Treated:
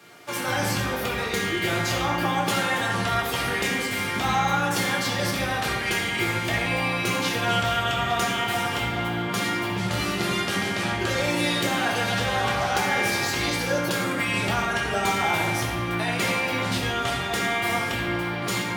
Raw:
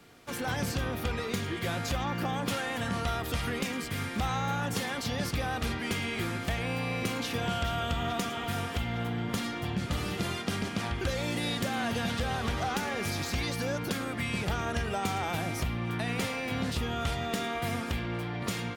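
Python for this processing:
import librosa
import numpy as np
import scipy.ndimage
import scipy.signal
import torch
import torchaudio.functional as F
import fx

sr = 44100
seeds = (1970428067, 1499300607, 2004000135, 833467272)

y = fx.highpass(x, sr, hz=420.0, slope=6)
y = fx.rev_fdn(y, sr, rt60_s=1.4, lf_ratio=1.35, hf_ratio=0.6, size_ms=50.0, drr_db=-3.0)
y = y * 10.0 ** (5.0 / 20.0)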